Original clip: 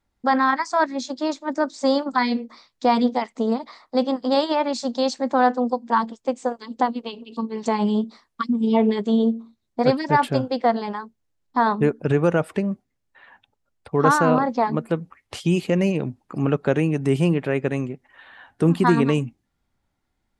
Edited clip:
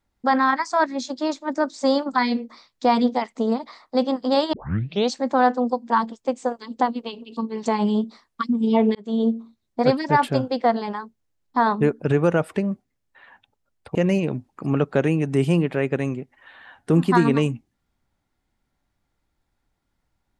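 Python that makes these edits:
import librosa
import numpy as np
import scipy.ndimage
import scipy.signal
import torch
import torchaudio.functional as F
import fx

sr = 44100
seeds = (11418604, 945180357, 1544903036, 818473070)

y = fx.edit(x, sr, fx.tape_start(start_s=4.53, length_s=0.58),
    fx.fade_in_span(start_s=8.95, length_s=0.33),
    fx.cut(start_s=13.95, length_s=1.72), tone=tone)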